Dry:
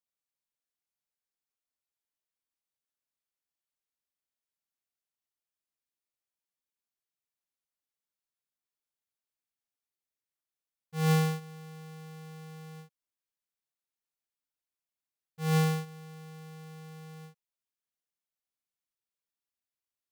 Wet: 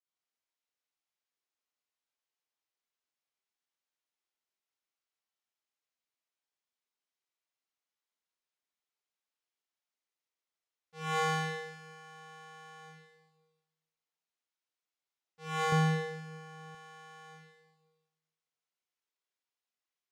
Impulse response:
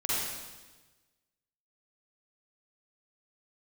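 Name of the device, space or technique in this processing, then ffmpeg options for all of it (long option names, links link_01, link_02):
supermarket ceiling speaker: -filter_complex "[0:a]highpass=320,lowpass=6100[link_01];[1:a]atrim=start_sample=2205[link_02];[link_01][link_02]afir=irnorm=-1:irlink=0,asettb=1/sr,asplit=3[link_03][link_04][link_05];[link_03]atrim=end=15.724[link_06];[link_04]atrim=start=15.72:end=16.75,asetpts=PTS-STARTPTS,afade=type=in:duration=0.004:curve=qsin,afade=type=out:start_time=1.026:duration=0.004:curve=qsin,lowshelf=frequency=390:gain=12[link_07];[link_05]atrim=start=16.746[link_08];[link_06][link_07]acrossfade=duration=0.004:curve1=hsin:curve2=qsin[link_09];[link_09][link_08]acrossfade=duration=0.004:curve1=qsin:curve2=hsin,volume=-6dB"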